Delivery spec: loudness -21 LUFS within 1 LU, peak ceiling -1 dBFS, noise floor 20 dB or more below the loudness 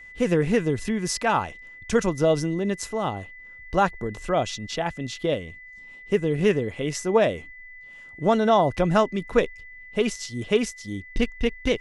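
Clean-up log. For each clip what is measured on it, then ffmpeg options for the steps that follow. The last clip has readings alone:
steady tone 2 kHz; tone level -42 dBFS; loudness -24.5 LUFS; peak level -5.5 dBFS; loudness target -21.0 LUFS
-> -af "bandreject=f=2000:w=30"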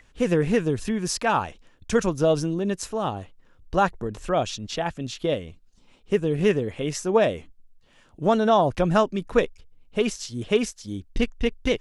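steady tone not found; loudness -24.5 LUFS; peak level -5.5 dBFS; loudness target -21.0 LUFS
-> -af "volume=1.5"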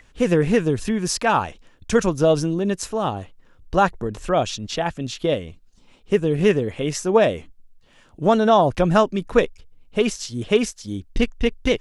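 loudness -21.0 LUFS; peak level -2.0 dBFS; noise floor -53 dBFS

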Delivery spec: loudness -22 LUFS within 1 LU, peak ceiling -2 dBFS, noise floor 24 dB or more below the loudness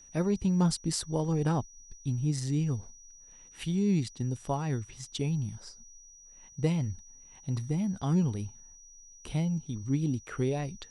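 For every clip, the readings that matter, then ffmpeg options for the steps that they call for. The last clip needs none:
steady tone 5.8 kHz; tone level -52 dBFS; loudness -31.0 LUFS; peak level -15.0 dBFS; loudness target -22.0 LUFS
-> -af "bandreject=f=5800:w=30"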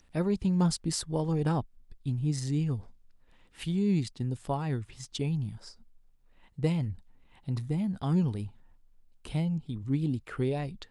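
steady tone not found; loudness -31.5 LUFS; peak level -15.0 dBFS; loudness target -22.0 LUFS
-> -af "volume=2.99"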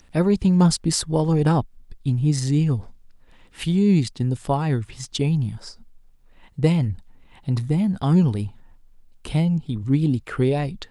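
loudness -22.0 LUFS; peak level -5.5 dBFS; noise floor -52 dBFS

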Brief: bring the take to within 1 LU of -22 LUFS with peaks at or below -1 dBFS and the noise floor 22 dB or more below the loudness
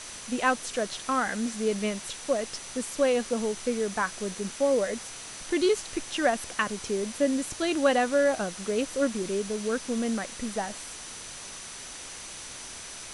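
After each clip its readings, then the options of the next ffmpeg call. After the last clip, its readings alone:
steady tone 6 kHz; tone level -47 dBFS; noise floor -42 dBFS; noise floor target -51 dBFS; loudness -29.0 LUFS; peak level -11.0 dBFS; loudness target -22.0 LUFS
-> -af "bandreject=f=6000:w=30"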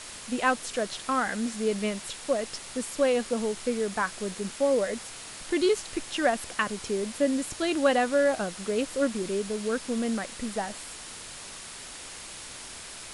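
steady tone not found; noise floor -42 dBFS; noise floor target -51 dBFS
-> -af "afftdn=nr=9:nf=-42"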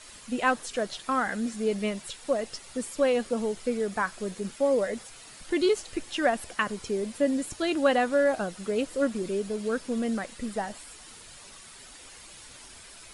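noise floor -48 dBFS; noise floor target -51 dBFS
-> -af "afftdn=nr=6:nf=-48"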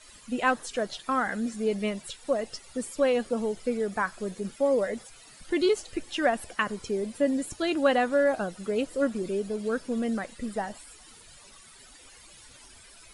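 noise floor -52 dBFS; loudness -28.5 LUFS; peak level -11.0 dBFS; loudness target -22.0 LUFS
-> -af "volume=2.11"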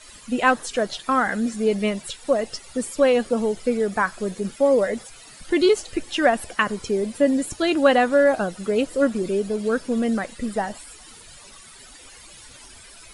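loudness -22.0 LUFS; peak level -4.5 dBFS; noise floor -46 dBFS

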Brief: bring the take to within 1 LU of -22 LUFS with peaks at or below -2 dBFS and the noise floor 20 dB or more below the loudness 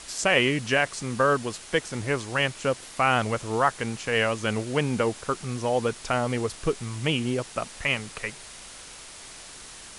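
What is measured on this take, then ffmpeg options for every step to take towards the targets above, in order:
noise floor -44 dBFS; noise floor target -46 dBFS; loudness -26.0 LUFS; peak level -6.5 dBFS; loudness target -22.0 LUFS
-> -af "afftdn=nr=6:nf=-44"
-af "volume=1.58"

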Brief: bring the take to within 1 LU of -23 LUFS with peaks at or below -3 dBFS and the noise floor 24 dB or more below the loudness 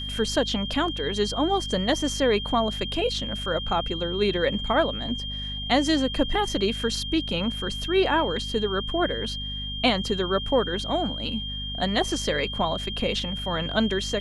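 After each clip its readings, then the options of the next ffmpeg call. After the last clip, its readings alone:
hum 50 Hz; highest harmonic 250 Hz; hum level -33 dBFS; steady tone 3.2 kHz; tone level -32 dBFS; loudness -25.5 LUFS; peak level -8.0 dBFS; loudness target -23.0 LUFS
-> -af "bandreject=f=50:t=h:w=4,bandreject=f=100:t=h:w=4,bandreject=f=150:t=h:w=4,bandreject=f=200:t=h:w=4,bandreject=f=250:t=h:w=4"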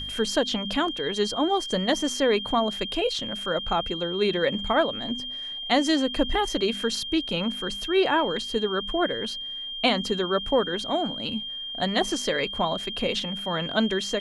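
hum not found; steady tone 3.2 kHz; tone level -32 dBFS
-> -af "bandreject=f=3200:w=30"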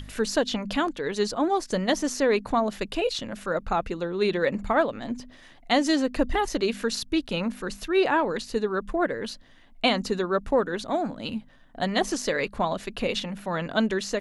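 steady tone not found; loudness -26.5 LUFS; peak level -8.5 dBFS; loudness target -23.0 LUFS
-> -af "volume=1.5"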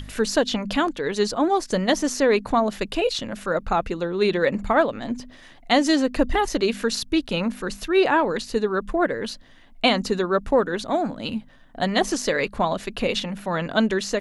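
loudness -23.0 LUFS; peak level -5.0 dBFS; noise floor -48 dBFS

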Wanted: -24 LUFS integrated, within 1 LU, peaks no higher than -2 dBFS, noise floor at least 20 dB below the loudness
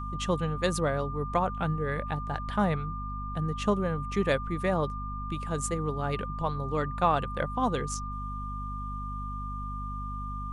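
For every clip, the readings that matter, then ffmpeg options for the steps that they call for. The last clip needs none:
hum 50 Hz; highest harmonic 250 Hz; hum level -34 dBFS; steady tone 1.2 kHz; tone level -37 dBFS; loudness -31.0 LUFS; peak level -11.0 dBFS; loudness target -24.0 LUFS
-> -af "bandreject=f=50:t=h:w=4,bandreject=f=100:t=h:w=4,bandreject=f=150:t=h:w=4,bandreject=f=200:t=h:w=4,bandreject=f=250:t=h:w=4"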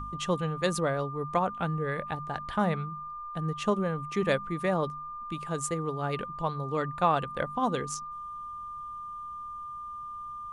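hum not found; steady tone 1.2 kHz; tone level -37 dBFS
-> -af "bandreject=f=1200:w=30"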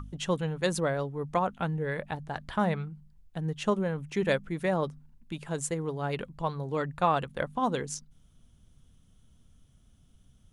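steady tone not found; loudness -31.5 LUFS; peak level -11.5 dBFS; loudness target -24.0 LUFS
-> -af "volume=2.37"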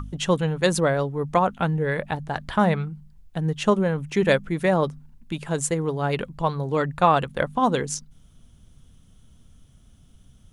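loudness -24.0 LUFS; peak level -4.0 dBFS; noise floor -54 dBFS

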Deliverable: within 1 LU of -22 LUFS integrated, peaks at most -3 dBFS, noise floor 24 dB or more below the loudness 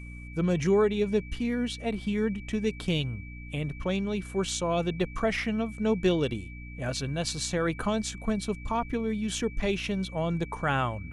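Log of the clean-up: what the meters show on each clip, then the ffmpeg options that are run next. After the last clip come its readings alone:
hum 60 Hz; highest harmonic 300 Hz; hum level -40 dBFS; steady tone 2.3 kHz; tone level -47 dBFS; loudness -29.5 LUFS; peak level -13.5 dBFS; loudness target -22.0 LUFS
-> -af "bandreject=f=60:t=h:w=6,bandreject=f=120:t=h:w=6,bandreject=f=180:t=h:w=6,bandreject=f=240:t=h:w=6,bandreject=f=300:t=h:w=6"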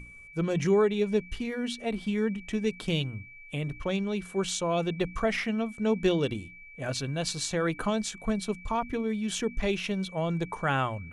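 hum not found; steady tone 2.3 kHz; tone level -47 dBFS
-> -af "bandreject=f=2300:w=30"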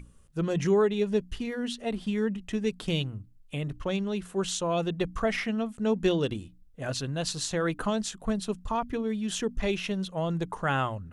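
steady tone not found; loudness -30.0 LUFS; peak level -14.0 dBFS; loudness target -22.0 LUFS
-> -af "volume=2.51"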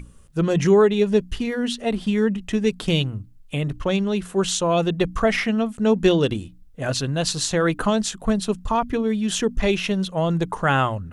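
loudness -22.0 LUFS; peak level -6.0 dBFS; noise floor -47 dBFS

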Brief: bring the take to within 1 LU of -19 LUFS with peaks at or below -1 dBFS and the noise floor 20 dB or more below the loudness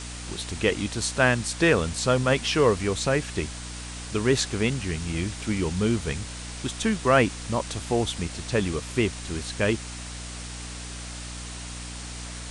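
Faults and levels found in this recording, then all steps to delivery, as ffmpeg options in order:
hum 60 Hz; highest harmonic 300 Hz; hum level -37 dBFS; noise floor -37 dBFS; noise floor target -47 dBFS; loudness -26.5 LUFS; peak level -6.0 dBFS; loudness target -19.0 LUFS
-> -af "bandreject=f=60:t=h:w=4,bandreject=f=120:t=h:w=4,bandreject=f=180:t=h:w=4,bandreject=f=240:t=h:w=4,bandreject=f=300:t=h:w=4"
-af "afftdn=nr=10:nf=-37"
-af "volume=2.37,alimiter=limit=0.891:level=0:latency=1"

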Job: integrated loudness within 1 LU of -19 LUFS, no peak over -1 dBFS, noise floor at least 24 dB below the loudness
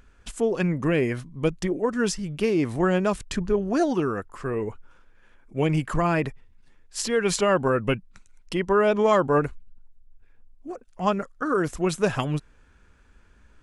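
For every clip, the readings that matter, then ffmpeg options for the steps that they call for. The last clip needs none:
loudness -25.0 LUFS; peak level -9.0 dBFS; loudness target -19.0 LUFS
-> -af "volume=2"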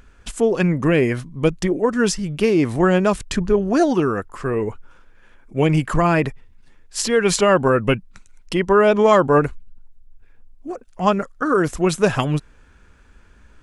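loudness -19.0 LUFS; peak level -3.0 dBFS; noise floor -51 dBFS

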